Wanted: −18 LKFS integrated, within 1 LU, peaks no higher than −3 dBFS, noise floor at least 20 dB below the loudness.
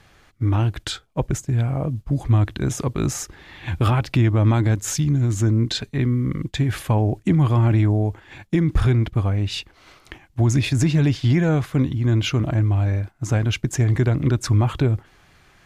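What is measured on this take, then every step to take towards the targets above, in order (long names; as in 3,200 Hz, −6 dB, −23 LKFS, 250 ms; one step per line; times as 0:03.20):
integrated loudness −21.0 LKFS; sample peak −9.0 dBFS; target loudness −18.0 LKFS
→ level +3 dB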